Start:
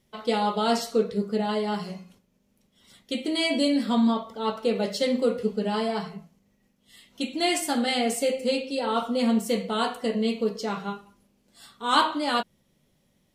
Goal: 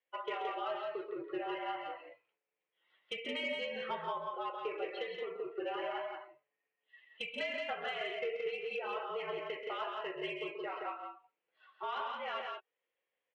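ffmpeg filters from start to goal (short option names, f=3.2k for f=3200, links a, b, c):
-filter_complex "[0:a]highpass=f=520:t=q:w=0.5412,highpass=f=520:t=q:w=1.307,lowpass=f=2.7k:t=q:w=0.5176,lowpass=f=2.7k:t=q:w=0.7071,lowpass=f=2.7k:t=q:w=1.932,afreqshift=-64,acrossover=split=680[a][b];[b]crystalizer=i=4.5:c=0[c];[a][c]amix=inputs=2:normalize=0,afftdn=nr=16:nf=-41,acompressor=threshold=-36dB:ratio=12,flanger=delay=1.8:depth=5.2:regen=64:speed=0.23:shape=sinusoidal,asoftclip=type=tanh:threshold=-31.5dB,aecho=1:1:131.2|172:0.355|0.631,volume=4dB"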